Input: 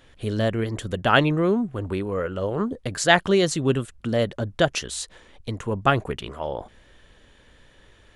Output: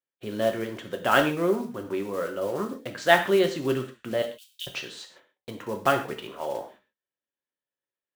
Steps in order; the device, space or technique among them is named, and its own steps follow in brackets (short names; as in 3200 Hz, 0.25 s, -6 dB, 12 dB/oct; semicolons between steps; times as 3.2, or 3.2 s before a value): early digital voice recorder (BPF 250–3400 Hz; block floating point 5-bit); 4.22–4.67 steep high-pass 2700 Hz 48 dB/oct; gate -49 dBFS, range -38 dB; non-linear reverb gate 0.17 s falling, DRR 4 dB; gain -3.5 dB